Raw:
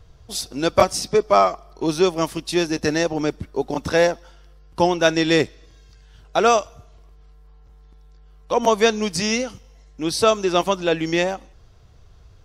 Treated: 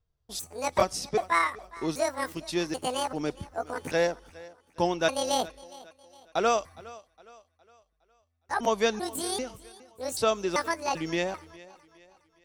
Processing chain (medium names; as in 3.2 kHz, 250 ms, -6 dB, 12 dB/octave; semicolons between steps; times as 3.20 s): pitch shift switched off and on +9 st, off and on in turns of 391 ms; gate with hold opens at -36 dBFS; thinning echo 412 ms, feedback 43%, high-pass 160 Hz, level -20 dB; trim -8.5 dB